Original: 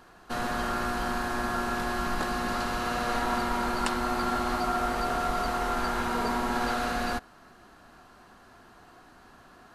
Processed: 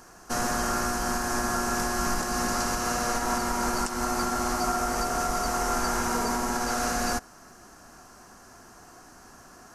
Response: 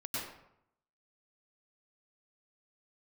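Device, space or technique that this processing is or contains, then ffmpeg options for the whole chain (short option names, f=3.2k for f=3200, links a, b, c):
over-bright horn tweeter: -af "highshelf=f=4.7k:t=q:w=3:g=7.5,alimiter=limit=-19.5dB:level=0:latency=1:release=209,volume=3dB"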